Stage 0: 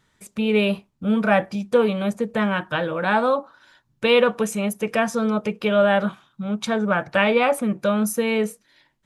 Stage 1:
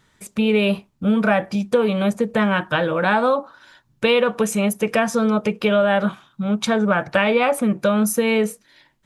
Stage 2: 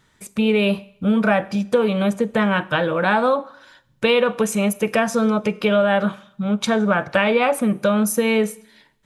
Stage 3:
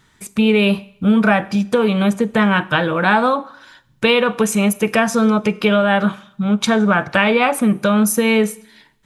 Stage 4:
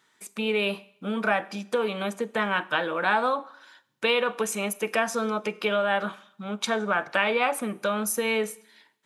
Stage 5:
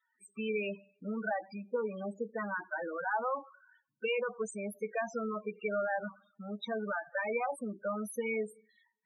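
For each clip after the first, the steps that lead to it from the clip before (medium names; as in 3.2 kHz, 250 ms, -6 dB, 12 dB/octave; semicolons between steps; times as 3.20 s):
compression 4:1, threshold -19 dBFS, peak gain reduction 6.5 dB; trim +5 dB
Schroeder reverb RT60 0.71 s, combs from 32 ms, DRR 19.5 dB
peaking EQ 550 Hz -6.5 dB 0.44 oct; trim +4.5 dB
high-pass 350 Hz 12 dB/octave; trim -8 dB
loudest bins only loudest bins 8; trim -7.5 dB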